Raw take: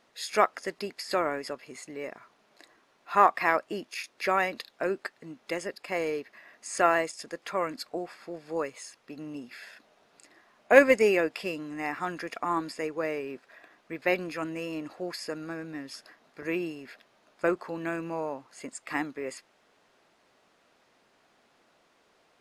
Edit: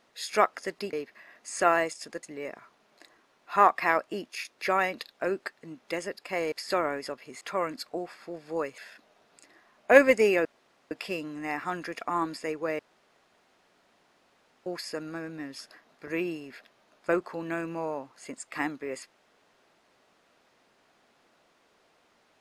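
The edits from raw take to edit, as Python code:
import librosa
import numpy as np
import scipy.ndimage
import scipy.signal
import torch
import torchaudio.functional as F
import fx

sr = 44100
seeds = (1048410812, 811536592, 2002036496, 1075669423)

y = fx.edit(x, sr, fx.swap(start_s=0.93, length_s=0.89, other_s=6.11, other_length_s=1.3),
    fx.cut(start_s=8.78, length_s=0.81),
    fx.insert_room_tone(at_s=11.26, length_s=0.46),
    fx.room_tone_fill(start_s=13.14, length_s=1.87), tone=tone)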